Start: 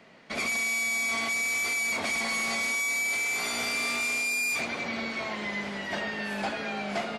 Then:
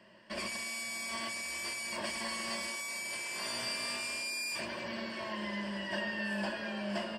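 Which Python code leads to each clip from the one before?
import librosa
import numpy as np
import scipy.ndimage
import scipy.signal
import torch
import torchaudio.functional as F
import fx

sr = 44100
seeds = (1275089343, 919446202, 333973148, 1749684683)

y = fx.ripple_eq(x, sr, per_octave=1.3, db=13)
y = y * 10.0 ** (-7.0 / 20.0)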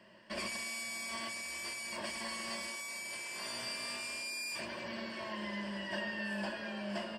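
y = fx.rider(x, sr, range_db=4, speed_s=2.0)
y = y * 10.0 ** (-3.0 / 20.0)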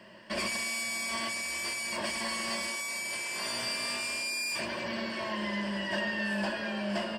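y = 10.0 ** (-30.0 / 20.0) * np.tanh(x / 10.0 ** (-30.0 / 20.0))
y = y * 10.0 ** (7.5 / 20.0)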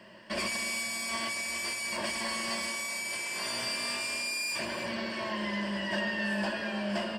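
y = x + 10.0 ** (-13.0 / 20.0) * np.pad(x, (int(307 * sr / 1000.0), 0))[:len(x)]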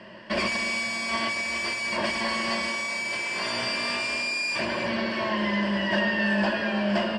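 y = fx.air_absorb(x, sr, metres=110.0)
y = y * 10.0 ** (8.0 / 20.0)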